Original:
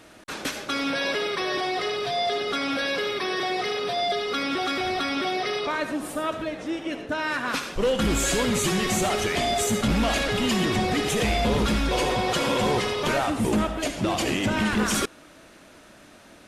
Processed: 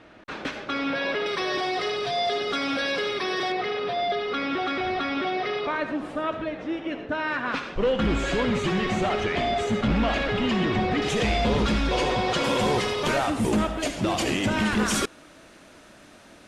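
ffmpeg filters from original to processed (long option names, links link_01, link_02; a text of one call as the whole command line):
ffmpeg -i in.wav -af "asetnsamples=nb_out_samples=441:pad=0,asendcmd='1.26 lowpass f 7400;3.52 lowpass f 3000;11.02 lowpass f 5800;12.44 lowpass f 11000',lowpass=3000" out.wav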